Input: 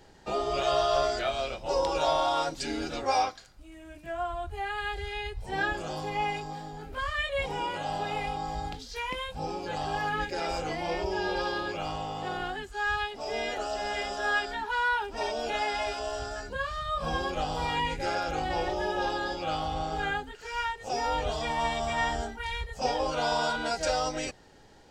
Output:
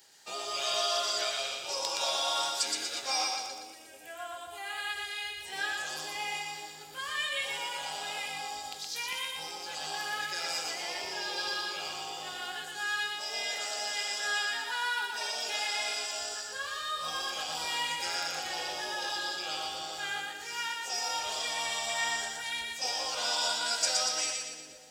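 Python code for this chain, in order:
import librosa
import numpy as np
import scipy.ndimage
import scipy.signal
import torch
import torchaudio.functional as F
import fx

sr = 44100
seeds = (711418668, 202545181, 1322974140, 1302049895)

y = scipy.signal.sosfilt(scipy.signal.butter(2, 100.0, 'highpass', fs=sr, output='sos'), x)
y = librosa.effects.preemphasis(y, coef=0.97, zi=[0.0])
y = fx.echo_split(y, sr, split_hz=480.0, low_ms=429, high_ms=119, feedback_pct=52, wet_db=-3)
y = y * 10.0 ** (8.5 / 20.0)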